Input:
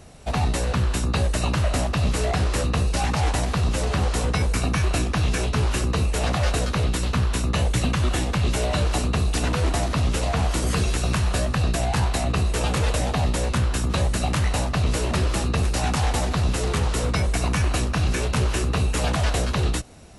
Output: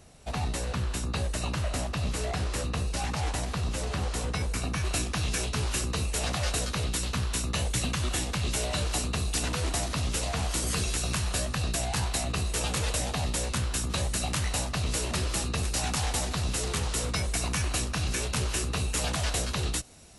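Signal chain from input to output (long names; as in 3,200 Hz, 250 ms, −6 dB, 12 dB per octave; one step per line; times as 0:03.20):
high-shelf EQ 3,000 Hz +4.5 dB, from 0:04.85 +11 dB
level −8.5 dB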